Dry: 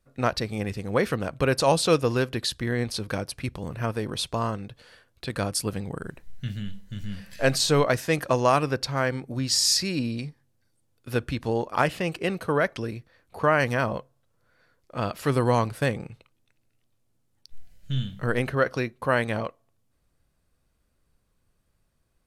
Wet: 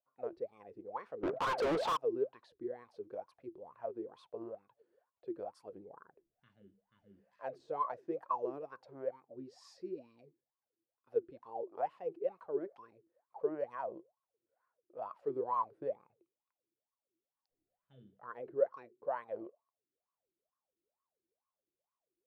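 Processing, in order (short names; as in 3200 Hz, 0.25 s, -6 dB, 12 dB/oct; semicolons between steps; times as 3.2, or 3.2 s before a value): wah 2.2 Hz 330–1100 Hz, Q 18; 1.23–1.97 overdrive pedal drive 38 dB, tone 2100 Hz, clips at -26 dBFS; gain +1 dB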